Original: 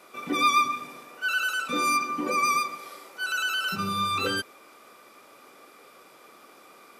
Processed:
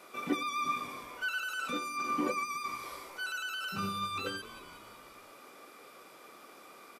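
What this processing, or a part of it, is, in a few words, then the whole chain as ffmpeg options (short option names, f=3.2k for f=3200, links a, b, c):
de-esser from a sidechain: -filter_complex "[0:a]asettb=1/sr,asplit=3[a][b][c];[a]atrim=end=2.344[d];[b]atrim=start=2.34:end=2.84,asetpts=PTS-STARTPTS,afade=t=in:d=0.004:c=qsin,afade=t=out:st=0.496:d=0.004:c=qsin,equalizer=f=550:t=o:w=0.67:g=-9.5[e];[c]atrim=start=2.836[f];[d][e]acrossfade=d=0.004:c1=hsin:c2=qsin[g];[g][f]acrossfade=d=0.004:c1=qsin:c2=hsin,asplit=6[h][i][j][k][l][m];[i]adelay=182,afreqshift=-59,volume=-23dB[n];[j]adelay=364,afreqshift=-118,volume=-27dB[o];[k]adelay=546,afreqshift=-177,volume=-31dB[p];[l]adelay=728,afreqshift=-236,volume=-35dB[q];[m]adelay=910,afreqshift=-295,volume=-39.1dB[r];[h][n][o][p][q][r]amix=inputs=6:normalize=0,asplit=2[s][t];[t]highpass=5.3k,apad=whole_len=348503[u];[s][u]sidechaincompress=threshold=-44dB:ratio=16:attack=0.92:release=32,volume=-1.5dB"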